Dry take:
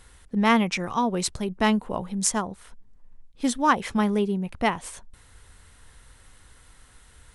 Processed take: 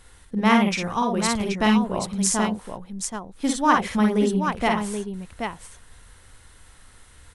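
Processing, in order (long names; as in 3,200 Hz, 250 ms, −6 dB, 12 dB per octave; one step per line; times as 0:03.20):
multi-tap delay 47/57/779 ms −5.5/−5/−6 dB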